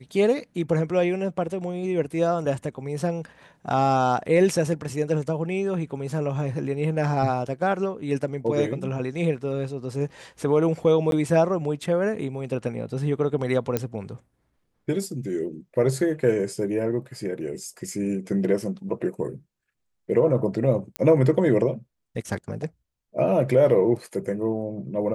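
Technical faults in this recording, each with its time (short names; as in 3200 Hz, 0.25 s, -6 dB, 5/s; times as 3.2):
11.11–11.12 gap 12 ms
13.77 pop -10 dBFS
20.96 pop -13 dBFS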